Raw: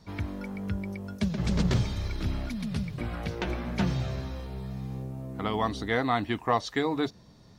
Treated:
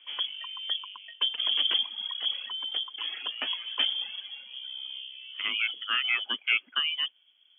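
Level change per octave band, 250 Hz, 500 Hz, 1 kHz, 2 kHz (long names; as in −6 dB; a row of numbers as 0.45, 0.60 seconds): −26.0, −21.5, −10.0, +5.5 decibels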